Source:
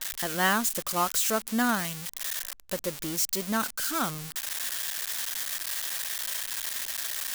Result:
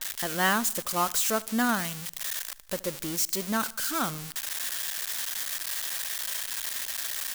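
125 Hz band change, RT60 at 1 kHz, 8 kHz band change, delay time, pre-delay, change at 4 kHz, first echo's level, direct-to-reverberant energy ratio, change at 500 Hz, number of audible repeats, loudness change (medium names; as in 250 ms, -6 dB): 0.0 dB, no reverb, 0.0 dB, 75 ms, no reverb, 0.0 dB, -22.0 dB, no reverb, 0.0 dB, 3, 0.0 dB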